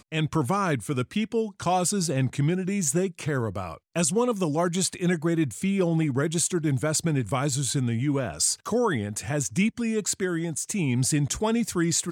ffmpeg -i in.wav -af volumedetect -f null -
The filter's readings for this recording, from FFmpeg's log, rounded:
mean_volume: -25.7 dB
max_volume: -11.5 dB